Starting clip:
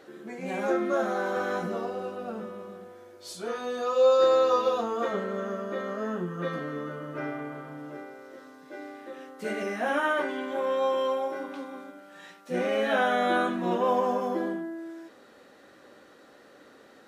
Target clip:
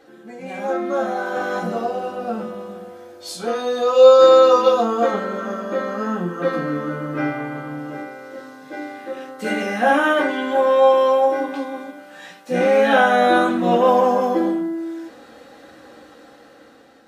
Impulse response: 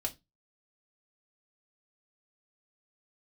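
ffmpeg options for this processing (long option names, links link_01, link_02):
-filter_complex "[0:a]dynaudnorm=framelen=600:gausssize=5:maxgain=9dB[link_01];[1:a]atrim=start_sample=2205,asetrate=48510,aresample=44100[link_02];[link_01][link_02]afir=irnorm=-1:irlink=0"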